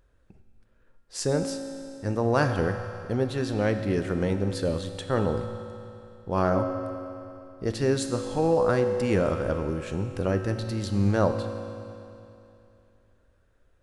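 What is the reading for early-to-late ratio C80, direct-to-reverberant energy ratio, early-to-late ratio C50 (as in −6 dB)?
8.0 dB, 6.0 dB, 7.0 dB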